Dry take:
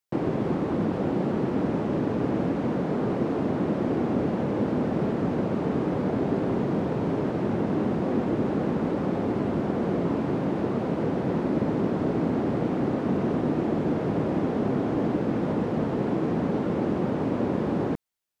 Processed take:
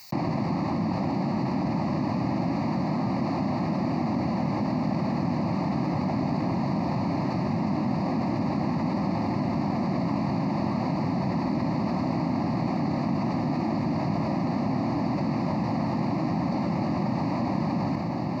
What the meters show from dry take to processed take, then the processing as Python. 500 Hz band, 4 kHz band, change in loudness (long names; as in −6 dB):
−6.0 dB, +4.5 dB, −0.5 dB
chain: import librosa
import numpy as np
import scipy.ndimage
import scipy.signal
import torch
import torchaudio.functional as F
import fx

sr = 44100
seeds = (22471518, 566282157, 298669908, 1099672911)

y = scipy.signal.sosfilt(scipy.signal.butter(2, 97.0, 'highpass', fs=sr, output='sos'), x)
y = fx.peak_eq(y, sr, hz=4500.0, db=11.5, octaves=0.23)
y = fx.fixed_phaser(y, sr, hz=2200.0, stages=8)
y = fx.echo_diffused(y, sr, ms=1282, feedback_pct=67, wet_db=-10.0)
y = fx.env_flatten(y, sr, amount_pct=70)